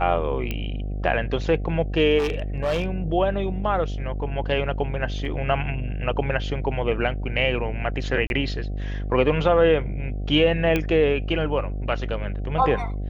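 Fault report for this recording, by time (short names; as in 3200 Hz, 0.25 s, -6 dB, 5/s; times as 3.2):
buzz 50 Hz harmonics 15 -28 dBFS
0.51 pop -14 dBFS
2.18–2.88 clipped -19.5 dBFS
5.25 gap 2.1 ms
8.27–8.3 gap 31 ms
10.76 pop -10 dBFS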